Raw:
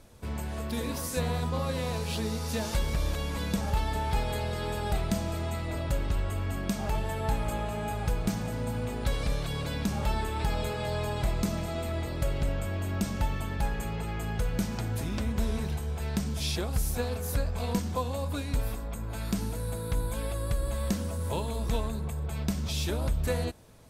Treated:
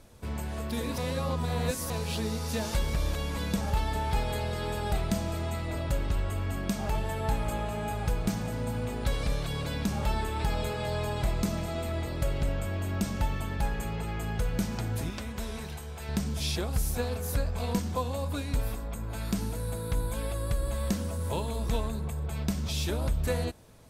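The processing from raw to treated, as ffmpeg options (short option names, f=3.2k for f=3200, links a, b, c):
-filter_complex "[0:a]asettb=1/sr,asplit=3[a][b][c];[a]atrim=end=15.104[d];[b]atrim=start=15.1:end=16.09,asetpts=PTS-STARTPTS,afade=t=in:d=0.004:c=qsin,afade=t=out:st=0.986:d=0.004:c=qsin,lowshelf=f=500:g=-8.5[e];[c]atrim=start=16.086[f];[d][e]acrossfade=d=0.004:c1=hsin:c2=qsin[g];[g][f]acrossfade=d=0.004:c1=qsin:c2=hsin,asplit=3[h][i][j];[h]atrim=end=0.982[k];[i]atrim=start=0.978:end=1.902,asetpts=PTS-STARTPTS,areverse[l];[j]atrim=start=1.898[m];[k][l]acrossfade=d=0.004:c1=hsin:c2=hsin[n];[n][m]acrossfade=d=0.004:c1=hsin:c2=hsin"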